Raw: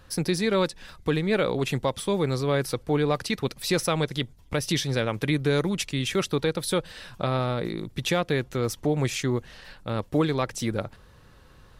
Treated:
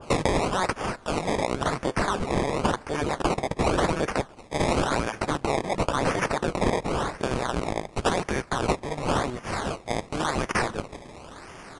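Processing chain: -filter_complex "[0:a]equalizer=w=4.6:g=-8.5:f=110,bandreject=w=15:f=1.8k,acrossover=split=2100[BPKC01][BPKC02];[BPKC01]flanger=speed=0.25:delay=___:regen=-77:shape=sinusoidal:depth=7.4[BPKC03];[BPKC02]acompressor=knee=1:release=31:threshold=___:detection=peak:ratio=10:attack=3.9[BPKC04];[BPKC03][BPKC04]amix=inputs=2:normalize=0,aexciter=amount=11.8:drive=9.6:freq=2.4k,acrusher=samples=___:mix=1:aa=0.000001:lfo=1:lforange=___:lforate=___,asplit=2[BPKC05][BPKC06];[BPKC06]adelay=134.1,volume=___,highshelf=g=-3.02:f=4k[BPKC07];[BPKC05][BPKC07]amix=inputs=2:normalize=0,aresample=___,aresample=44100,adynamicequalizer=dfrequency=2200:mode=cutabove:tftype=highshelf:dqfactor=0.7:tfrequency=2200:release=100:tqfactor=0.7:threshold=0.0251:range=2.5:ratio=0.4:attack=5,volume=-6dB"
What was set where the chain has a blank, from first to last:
5.3, -46dB, 21, 21, 0.93, -29dB, 22050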